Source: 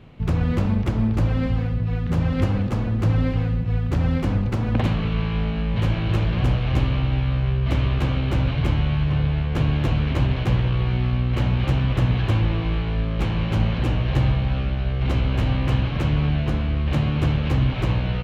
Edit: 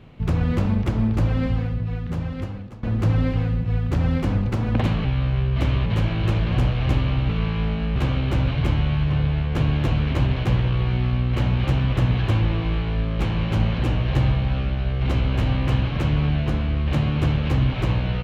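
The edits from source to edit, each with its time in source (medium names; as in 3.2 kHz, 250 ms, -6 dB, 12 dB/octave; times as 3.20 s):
1.49–2.83 s: fade out, to -20.5 dB
5.05–5.72 s: swap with 7.15–7.96 s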